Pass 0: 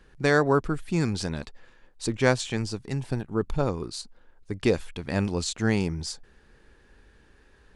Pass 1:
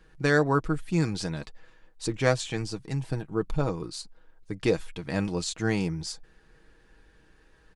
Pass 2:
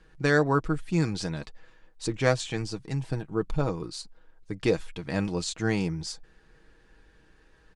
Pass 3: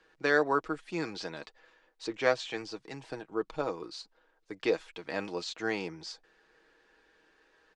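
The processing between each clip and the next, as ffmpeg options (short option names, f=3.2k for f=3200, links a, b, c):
-af "aecho=1:1:6.3:0.48,volume=-2.5dB"
-af "lowpass=9.8k"
-filter_complex "[0:a]acrossover=split=300 7800:gain=0.0794 1 0.158[a][b][c];[a][b][c]amix=inputs=3:normalize=0,acrossover=split=5700[d][e];[e]acompressor=threshold=-57dB:ratio=4:attack=1:release=60[f];[d][f]amix=inputs=2:normalize=0,volume=-1.5dB"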